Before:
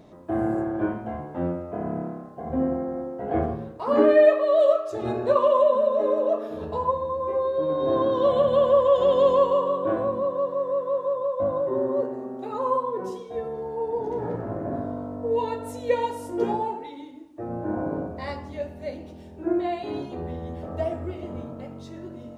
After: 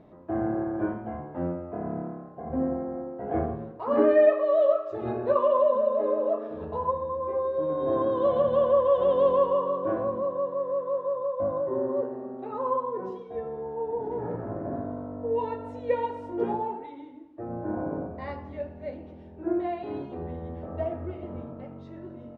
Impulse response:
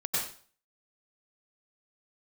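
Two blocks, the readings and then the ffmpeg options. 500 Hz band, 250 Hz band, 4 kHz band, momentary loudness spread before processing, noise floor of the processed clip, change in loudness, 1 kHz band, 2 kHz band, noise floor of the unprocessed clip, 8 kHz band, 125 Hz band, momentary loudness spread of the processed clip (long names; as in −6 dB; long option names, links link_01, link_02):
−3.0 dB, −3.0 dB, below −10 dB, 16 LU, −45 dBFS, −3.0 dB, −3.0 dB, −4.5 dB, −42 dBFS, can't be measured, −3.0 dB, 16 LU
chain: -filter_complex "[0:a]lowpass=2200,asplit=2[link_01][link_02];[link_02]aecho=0:1:254:0.0708[link_03];[link_01][link_03]amix=inputs=2:normalize=0,volume=-3dB"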